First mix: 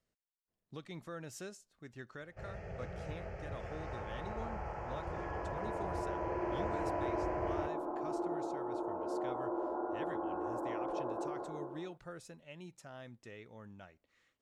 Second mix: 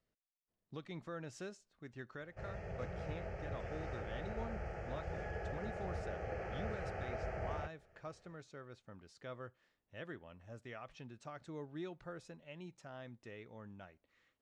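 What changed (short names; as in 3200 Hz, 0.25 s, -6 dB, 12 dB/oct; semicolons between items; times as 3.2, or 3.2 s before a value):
speech: add air absorption 85 m; second sound: muted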